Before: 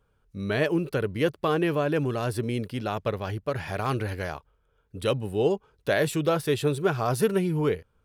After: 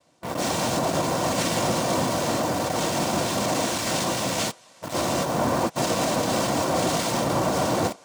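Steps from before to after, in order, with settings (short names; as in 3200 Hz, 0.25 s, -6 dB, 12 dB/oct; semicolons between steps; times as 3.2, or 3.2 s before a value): spectral dilation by 0.24 s; limiter -12 dBFS, peak gain reduction 9 dB; reverse; compressor 6:1, threshold -30 dBFS, peak gain reduction 12.5 dB; reverse; noise vocoder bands 2; thinning echo 0.446 s, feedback 80%, high-pass 530 Hz, level -23 dB; in parallel at -8.5 dB: companded quantiser 2-bit; on the sum: notch comb 420 Hz; gain +5 dB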